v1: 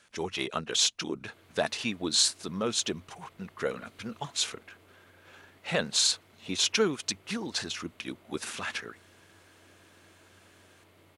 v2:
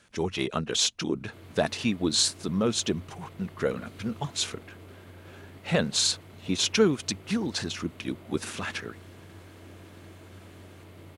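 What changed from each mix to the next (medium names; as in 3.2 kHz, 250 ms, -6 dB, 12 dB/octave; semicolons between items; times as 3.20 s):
background +6.0 dB; master: add bass shelf 360 Hz +10.5 dB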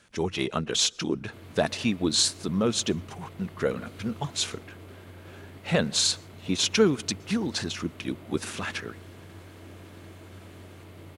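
reverb: on, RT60 0.80 s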